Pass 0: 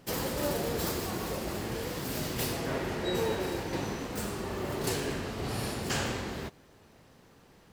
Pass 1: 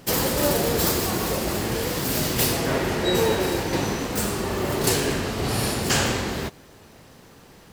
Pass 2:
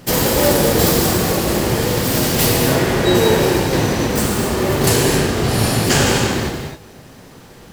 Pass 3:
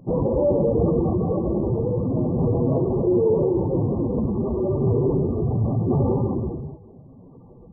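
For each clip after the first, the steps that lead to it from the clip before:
treble shelf 4.5 kHz +4.5 dB; trim +9 dB
gated-style reverb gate 300 ms flat, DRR 1 dB; in parallel at -10 dB: sample-and-hold 32×; on the sum: trim +4 dB
spectral contrast enhancement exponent 1.9; brick-wall FIR low-pass 1.2 kHz; trim -5 dB

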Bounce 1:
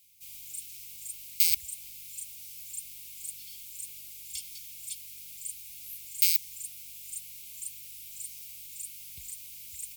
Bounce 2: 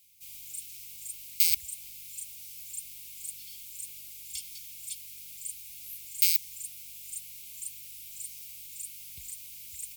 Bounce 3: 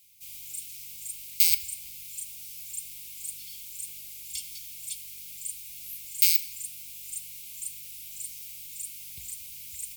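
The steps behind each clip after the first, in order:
peaking EQ 1.2 kHz +2.5 dB 0.66 oct
simulated room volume 780 m³, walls mixed, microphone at 0.44 m; trim +2.5 dB

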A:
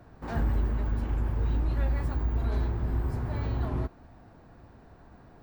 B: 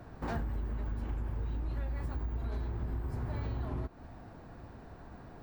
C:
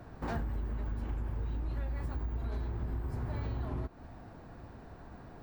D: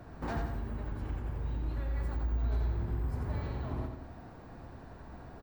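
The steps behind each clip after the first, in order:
compression 12:1, threshold -35 dBFS, peak gain reduction 13.5 dB; trim +3 dB
no audible change
feedback delay 87 ms, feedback 48%, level -5 dB

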